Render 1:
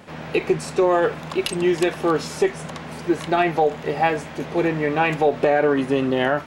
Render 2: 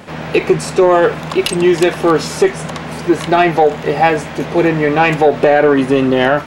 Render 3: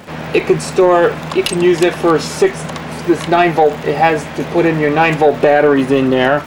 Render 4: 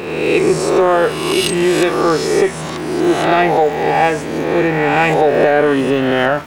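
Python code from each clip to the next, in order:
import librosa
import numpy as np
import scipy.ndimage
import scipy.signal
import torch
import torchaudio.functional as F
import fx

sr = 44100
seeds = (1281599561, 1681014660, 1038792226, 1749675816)

y1 = 10.0 ** (-9.5 / 20.0) * np.tanh(x / 10.0 ** (-9.5 / 20.0))
y1 = y1 * librosa.db_to_amplitude(9.0)
y2 = fx.dmg_crackle(y1, sr, seeds[0], per_s=110.0, level_db=-28.0)
y3 = fx.spec_swells(y2, sr, rise_s=1.27)
y3 = y3 * librosa.db_to_amplitude(-4.0)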